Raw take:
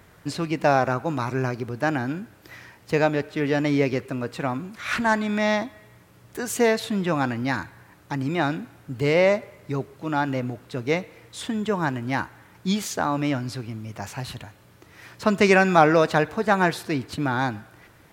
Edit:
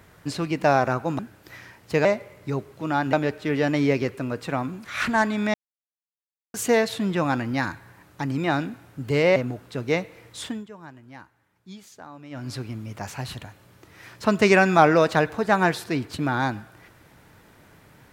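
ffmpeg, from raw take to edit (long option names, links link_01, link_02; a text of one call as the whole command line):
ffmpeg -i in.wav -filter_complex "[0:a]asplit=9[link_01][link_02][link_03][link_04][link_05][link_06][link_07][link_08][link_09];[link_01]atrim=end=1.192[link_10];[link_02]atrim=start=2.178:end=3.042[link_11];[link_03]atrim=start=9.268:end=10.352[link_12];[link_04]atrim=start=3.038:end=5.45,asetpts=PTS-STARTPTS,afade=type=out:start_time=2.408:duration=0.004:curve=hsin[link_13];[link_05]atrim=start=5.45:end=6.45,asetpts=PTS-STARTPTS,volume=0[link_14];[link_06]atrim=start=6.45:end=9.272,asetpts=PTS-STARTPTS,afade=type=in:duration=0.004:curve=hsin[link_15];[link_07]atrim=start=10.348:end=11.66,asetpts=PTS-STARTPTS,afade=type=out:start_time=1.072:duration=0.24:silence=0.11885[link_16];[link_08]atrim=start=11.66:end=13.29,asetpts=PTS-STARTPTS,volume=-18.5dB[link_17];[link_09]atrim=start=13.29,asetpts=PTS-STARTPTS,afade=type=in:duration=0.24:silence=0.11885[link_18];[link_10][link_11]acrossfade=duration=0.004:curve1=hsin:curve2=hsin[link_19];[link_19][link_12]acrossfade=duration=0.004:curve1=hsin:curve2=hsin[link_20];[link_13][link_14][link_15]concat=n=3:v=0:a=1[link_21];[link_20][link_21]acrossfade=duration=0.004:curve1=hsin:curve2=hsin[link_22];[link_16][link_17][link_18]concat=n=3:v=0:a=1[link_23];[link_22][link_23]acrossfade=duration=0.004:curve1=hsin:curve2=hsin" out.wav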